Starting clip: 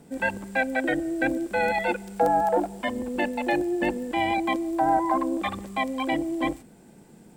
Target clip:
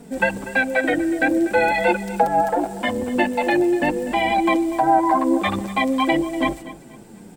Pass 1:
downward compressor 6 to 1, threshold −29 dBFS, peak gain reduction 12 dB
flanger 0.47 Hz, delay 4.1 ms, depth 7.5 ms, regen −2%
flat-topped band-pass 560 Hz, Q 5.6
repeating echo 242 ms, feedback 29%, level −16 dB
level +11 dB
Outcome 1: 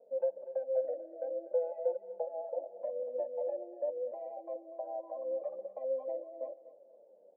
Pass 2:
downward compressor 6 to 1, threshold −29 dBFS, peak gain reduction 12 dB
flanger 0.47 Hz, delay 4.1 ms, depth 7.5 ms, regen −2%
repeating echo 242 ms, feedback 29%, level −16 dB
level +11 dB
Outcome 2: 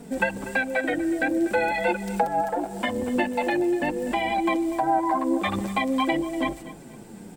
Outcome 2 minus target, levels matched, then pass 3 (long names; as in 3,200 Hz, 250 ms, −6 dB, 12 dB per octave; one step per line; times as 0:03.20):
downward compressor: peak gain reduction +6.5 dB
downward compressor 6 to 1, threshold −21.5 dBFS, peak gain reduction 5.5 dB
flanger 0.47 Hz, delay 4.1 ms, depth 7.5 ms, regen −2%
repeating echo 242 ms, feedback 29%, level −16 dB
level +11 dB